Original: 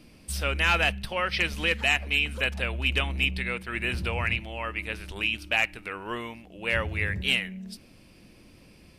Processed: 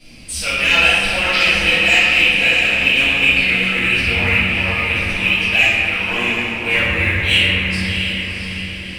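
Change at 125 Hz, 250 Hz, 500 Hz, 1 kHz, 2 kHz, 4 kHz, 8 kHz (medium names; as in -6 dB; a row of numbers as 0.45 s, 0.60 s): +8.5 dB, +12.0 dB, +8.5 dB, +8.0 dB, +14.0 dB, +14.0 dB, +12.5 dB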